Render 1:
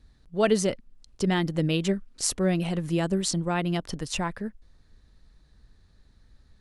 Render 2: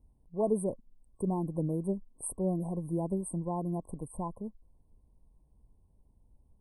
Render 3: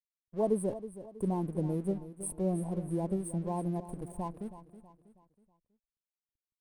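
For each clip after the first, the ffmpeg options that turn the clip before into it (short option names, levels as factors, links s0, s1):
-af "afftfilt=real='re*(1-between(b*sr/4096,1100,8200))':imag='im*(1-between(b*sr/4096,1100,8200))':win_size=4096:overlap=0.75,volume=0.473"
-af "aeval=exprs='sgn(val(0))*max(abs(val(0))-0.00178,0)':c=same,agate=range=0.0224:threshold=0.00126:ratio=3:detection=peak,aecho=1:1:322|644|966|1288:0.211|0.0888|0.0373|0.0157"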